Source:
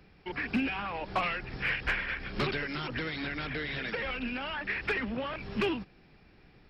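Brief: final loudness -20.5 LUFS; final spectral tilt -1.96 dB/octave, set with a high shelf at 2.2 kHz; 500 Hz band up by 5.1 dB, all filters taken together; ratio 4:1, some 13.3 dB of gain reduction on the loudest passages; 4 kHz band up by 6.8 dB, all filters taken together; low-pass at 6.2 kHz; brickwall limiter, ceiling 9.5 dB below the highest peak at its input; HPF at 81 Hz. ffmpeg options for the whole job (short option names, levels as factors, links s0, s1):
-af "highpass=81,lowpass=6200,equalizer=f=500:t=o:g=6,highshelf=f=2200:g=5.5,equalizer=f=4000:t=o:g=4.5,acompressor=threshold=0.0112:ratio=4,volume=11.9,alimiter=limit=0.237:level=0:latency=1"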